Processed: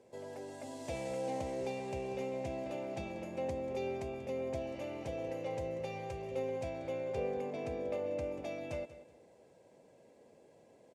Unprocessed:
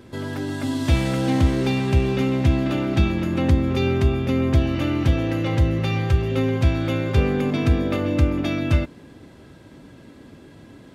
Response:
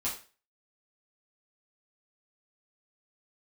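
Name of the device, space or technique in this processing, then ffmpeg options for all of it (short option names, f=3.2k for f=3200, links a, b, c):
piezo pickup straight into a mixer: -filter_complex "[0:a]lowpass=5.2k,firequalizer=gain_entry='entry(200,0);entry(290,-7);entry(480,8);entry(840,-2);entry(1300,-21);entry(2300,-16);entry(3400,-26);entry(7200,-13)':delay=0.05:min_phase=1,aderivative,aecho=1:1:187|374|561:0.178|0.0445|0.0111,asettb=1/sr,asplit=3[a][b][c];[a]atrim=end=6.694[d];[b]atrim=start=6.69:end=8.24,asetpts=PTS-STARTPTS,afade=t=in:d=0.004:c=qsin,afade=t=out:st=1.546:d=0.004:c=qsin,highshelf=f=5.1k:g=-5[e];[c]atrim=start=8.236[f];[d][e]acrossfade=d=0.004:c1=hsin:c2=qsin[g];[g][f]acrossfade=d=0.004:c1=qsin:c2=hsin,volume=9dB"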